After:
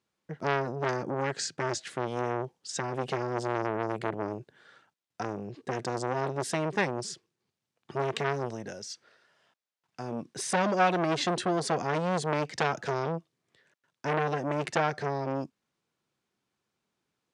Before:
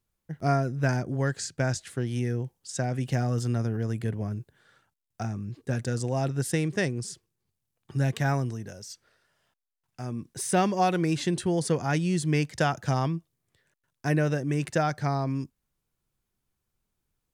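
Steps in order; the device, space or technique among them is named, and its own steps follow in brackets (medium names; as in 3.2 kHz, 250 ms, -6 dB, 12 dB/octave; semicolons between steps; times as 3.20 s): public-address speaker with an overloaded transformer (transformer saturation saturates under 1.6 kHz; band-pass 210–5700 Hz); trim +5 dB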